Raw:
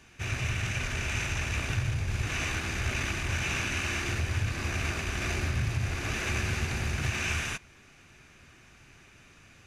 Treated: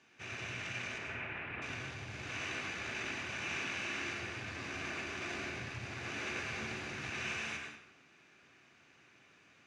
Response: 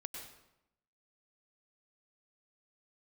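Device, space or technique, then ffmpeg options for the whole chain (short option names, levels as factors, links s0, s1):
supermarket ceiling speaker: -filter_complex "[0:a]asettb=1/sr,asplit=3[s0][s1][s2];[s0]atrim=end=0.984[s3];[s1]atrim=start=0.98:end=1.62,asetpts=PTS-STARTPTS,afade=t=in:d=0.004:c=qsin,afade=t=out:st=0.636:d=0.004:c=qsin,lowpass=f=2500:w=0.5412,lowpass=f=2500:w=1.3066[s4];[s2]atrim=start=1.616[s5];[s3][s4]acrossfade=d=0.004:c1=hsin:c2=qsin[s6];[s6][s5]acrossfade=d=0.004:c1=qsin:c2=hsin,highpass=210,lowpass=5600[s7];[1:a]atrim=start_sample=2205[s8];[s7][s8]afir=irnorm=-1:irlink=0,volume=0.631"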